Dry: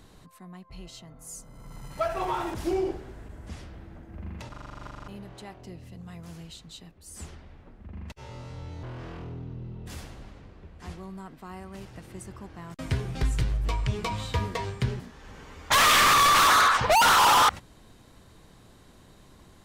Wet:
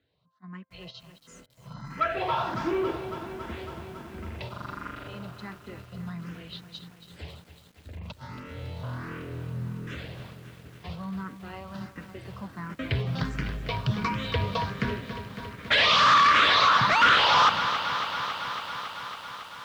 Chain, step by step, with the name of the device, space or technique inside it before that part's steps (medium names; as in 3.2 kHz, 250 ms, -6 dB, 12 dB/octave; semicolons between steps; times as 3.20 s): gate -44 dBFS, range -23 dB; barber-pole phaser into a guitar amplifier (barber-pole phaser +1.4 Hz; saturation -23.5 dBFS, distortion -11 dB; cabinet simulation 110–4500 Hz, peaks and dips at 360 Hz -7 dB, 800 Hz -7 dB, 1.5 kHz +3 dB); bit-crushed delay 277 ms, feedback 80%, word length 10-bit, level -10.5 dB; trim +8 dB